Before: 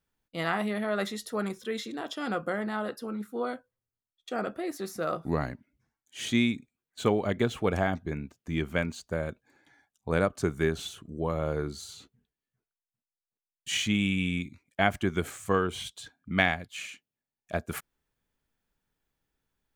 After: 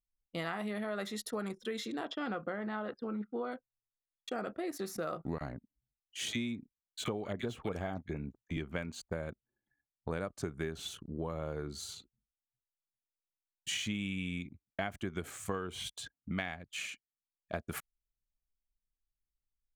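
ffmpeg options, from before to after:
ffmpeg -i in.wav -filter_complex "[0:a]asettb=1/sr,asplit=3[link_01][link_02][link_03];[link_01]atrim=end=2.054[link_04];[link_02]atrim=start=2.05:end=3.52,asetpts=PTS-STARTPTS,afade=type=in:duration=0.004:curve=qsin,afade=type=out:start_time=1.466:duration=0.004:curve=qsin,lowpass=3500[link_05];[link_03]atrim=start=3.516[link_06];[link_04][link_05]acrossfade=duration=0.004:curve1=hsin:curve2=qsin[link_07];[link_07][link_06]acrossfade=duration=0.004:curve1=qsin:curve2=hsin,asettb=1/sr,asplit=3[link_08][link_09][link_10];[link_08]atrim=end=5.384[link_11];[link_09]atrim=start=5.38:end=8.57,asetpts=PTS-STARTPTS,afade=type=in:duration=0.004:curve=qsin,afade=type=out:start_time=3.186:duration=0.004:curve=qsin,acrossover=split=1500[link_12][link_13];[link_12]adelay=30[link_14];[link_14][link_13]amix=inputs=2:normalize=0,atrim=end_sample=140679[link_15];[link_10]atrim=start=8.566[link_16];[link_11][link_15]acrossfade=duration=0.004:curve1=hsin:curve2=qsin[link_17];[link_17][link_16]acrossfade=duration=0.004:curve1=qsin:curve2=hsin,anlmdn=0.01,acompressor=threshold=-34dB:ratio=6" out.wav

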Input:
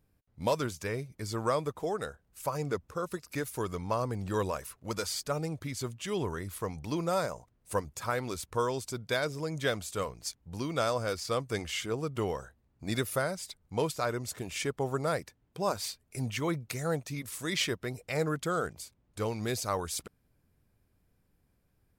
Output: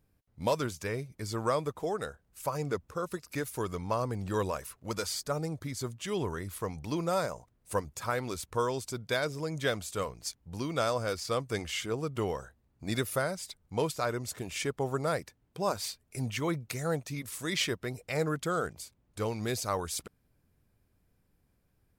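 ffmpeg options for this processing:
ffmpeg -i in.wav -filter_complex "[0:a]asettb=1/sr,asplit=3[link_01][link_02][link_03];[link_01]atrim=end=5.164[link_04];[link_02]atrim=start=5.16:end=6.02,asetpts=PTS-STARTPTS,afade=type=in:duration=0.004:curve=qsin,afade=type=out:start_time=0.856:duration=0.004:curve=qsin,equalizer=frequency=2700:width=2.5:gain=-6[link_05];[link_03]atrim=start=6.016[link_06];[link_04][link_05]acrossfade=duration=0.004:curve1=hsin:curve2=qsin[link_07];[link_07][link_06]acrossfade=duration=0.004:curve1=qsin:curve2=hsin" out.wav

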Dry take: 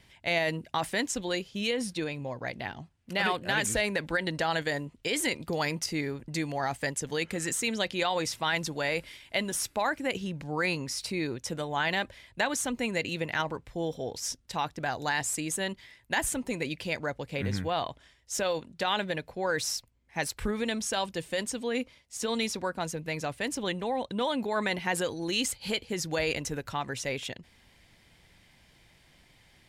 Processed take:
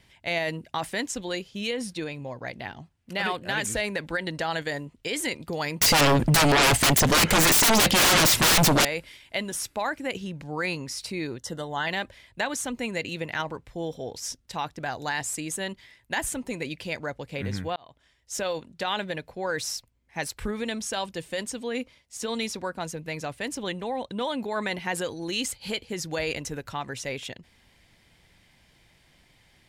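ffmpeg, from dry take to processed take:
ffmpeg -i in.wav -filter_complex "[0:a]asettb=1/sr,asplit=3[link_01][link_02][link_03];[link_01]atrim=end=5.814[link_04];[link_02]atrim=start=5.81:end=8.85,asetpts=PTS-STARTPTS,afade=type=in:duration=0.004:curve=qsin,afade=type=out:start_time=3.036:duration=0.004:curve=qsin,aeval=exprs='0.168*sin(PI/2*10*val(0)/0.168)':channel_layout=same[link_05];[link_03]atrim=start=8.846[link_06];[link_04][link_05]acrossfade=duration=0.004:curve1=hsin:curve2=qsin[link_07];[link_07][link_06]acrossfade=duration=0.004:curve1=qsin:curve2=hsin,asettb=1/sr,asplit=3[link_08][link_09][link_10];[link_08]atrim=end=11.384[link_11];[link_09]atrim=start=11.38:end=11.87,asetpts=PTS-STARTPTS,afade=type=in:duration=0.004:curve=qsin,afade=type=out:start_time=0.486:duration=0.004:curve=qsin,asuperstop=centerf=2400:order=20:qfactor=4[link_12];[link_10]atrim=start=11.866[link_13];[link_11][link_12]acrossfade=duration=0.004:curve1=hsin:curve2=qsin[link_14];[link_14][link_13]acrossfade=duration=0.004:curve1=qsin:curve2=hsin,asplit=2[link_15][link_16];[link_15]atrim=end=17.76,asetpts=PTS-STARTPTS,afade=type=out:start_time=17.756:duration=0.004:curve=hsin[link_17];[link_16]atrim=start=17.76,asetpts=PTS-STARTPTS,afade=type=in:duration=0.58[link_18];[link_17][link_18]concat=n=2:v=0:a=1" out.wav

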